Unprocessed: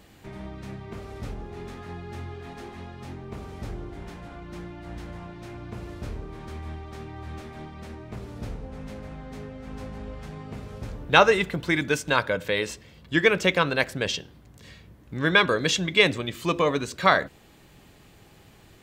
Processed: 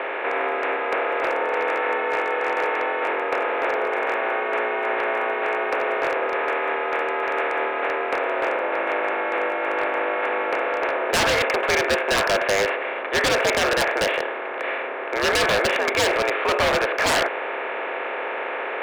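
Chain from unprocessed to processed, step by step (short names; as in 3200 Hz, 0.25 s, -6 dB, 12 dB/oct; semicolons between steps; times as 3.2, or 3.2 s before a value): per-bin compression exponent 0.4; mistuned SSB +78 Hz 280–2500 Hz; wavefolder -14 dBFS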